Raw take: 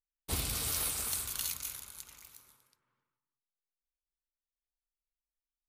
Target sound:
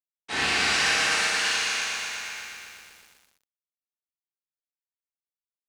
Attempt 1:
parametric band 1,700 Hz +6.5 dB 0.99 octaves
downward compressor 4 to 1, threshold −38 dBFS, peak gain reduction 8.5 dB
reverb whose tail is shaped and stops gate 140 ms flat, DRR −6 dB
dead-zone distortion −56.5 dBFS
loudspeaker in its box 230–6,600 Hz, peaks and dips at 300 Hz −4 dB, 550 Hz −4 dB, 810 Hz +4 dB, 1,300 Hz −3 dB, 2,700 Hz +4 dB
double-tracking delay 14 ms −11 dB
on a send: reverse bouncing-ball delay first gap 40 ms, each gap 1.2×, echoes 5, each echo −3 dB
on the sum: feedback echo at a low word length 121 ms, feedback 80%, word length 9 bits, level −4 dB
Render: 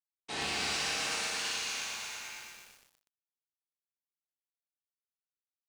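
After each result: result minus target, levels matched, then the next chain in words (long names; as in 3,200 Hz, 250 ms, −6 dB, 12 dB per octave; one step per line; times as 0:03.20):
downward compressor: peak gain reduction +8.5 dB; 2,000 Hz band −2.5 dB
parametric band 1,700 Hz +6.5 dB 0.99 octaves
reverb whose tail is shaped and stops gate 140 ms flat, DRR −6 dB
dead-zone distortion −56.5 dBFS
loudspeaker in its box 230–6,600 Hz, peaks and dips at 300 Hz −4 dB, 550 Hz −4 dB, 810 Hz +4 dB, 1,300 Hz −3 dB, 2,700 Hz +4 dB
double-tracking delay 14 ms −11 dB
on a send: reverse bouncing-ball delay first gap 40 ms, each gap 1.2×, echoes 5, each echo −3 dB
on the sum: feedback echo at a low word length 121 ms, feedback 80%, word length 9 bits, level −4 dB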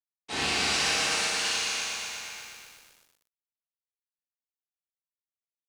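2,000 Hz band −3.0 dB
parametric band 1,700 Hz +15 dB 0.99 octaves
reverb whose tail is shaped and stops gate 140 ms flat, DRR −6 dB
dead-zone distortion −56.5 dBFS
loudspeaker in its box 230–6,600 Hz, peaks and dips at 300 Hz −4 dB, 550 Hz −4 dB, 810 Hz +4 dB, 1,300 Hz −3 dB, 2,700 Hz +4 dB
double-tracking delay 14 ms −11 dB
on a send: reverse bouncing-ball delay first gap 40 ms, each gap 1.2×, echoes 5, each echo −3 dB
on the sum: feedback echo at a low word length 121 ms, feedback 80%, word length 9 bits, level −4 dB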